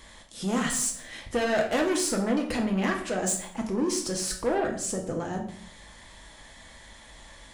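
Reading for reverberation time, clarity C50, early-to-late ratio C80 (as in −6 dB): 0.60 s, 8.5 dB, 11.5 dB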